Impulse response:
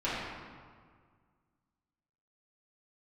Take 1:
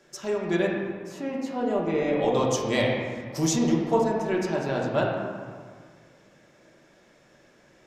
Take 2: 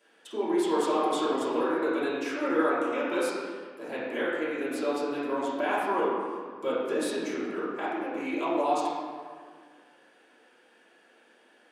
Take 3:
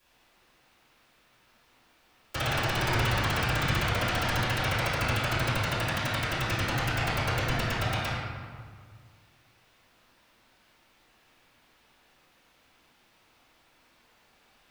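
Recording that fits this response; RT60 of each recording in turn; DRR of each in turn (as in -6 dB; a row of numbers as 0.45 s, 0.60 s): 2; 1.8 s, 1.8 s, 1.8 s; -3.0 dB, -12.0 dB, -17.5 dB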